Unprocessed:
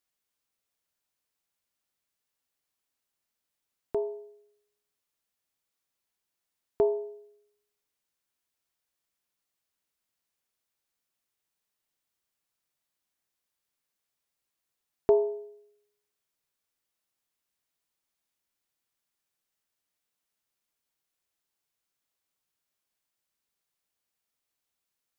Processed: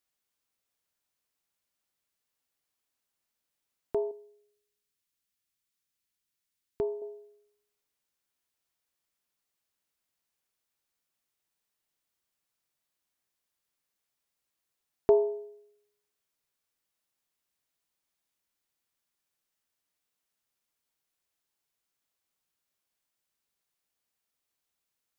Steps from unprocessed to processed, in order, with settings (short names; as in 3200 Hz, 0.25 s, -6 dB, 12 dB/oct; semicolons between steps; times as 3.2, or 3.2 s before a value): 4.11–7.02 bell 680 Hz -10.5 dB 1.8 oct